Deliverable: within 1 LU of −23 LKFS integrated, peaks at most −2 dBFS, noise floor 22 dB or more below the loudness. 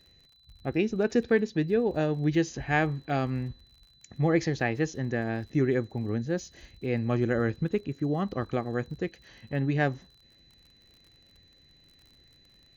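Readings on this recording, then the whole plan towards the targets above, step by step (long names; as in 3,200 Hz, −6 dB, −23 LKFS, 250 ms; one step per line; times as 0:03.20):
crackle rate 41 per second; interfering tone 4,000 Hz; level of the tone −59 dBFS; integrated loudness −29.0 LKFS; sample peak −12.0 dBFS; target loudness −23.0 LKFS
→ click removal
notch filter 4,000 Hz, Q 30
level +6 dB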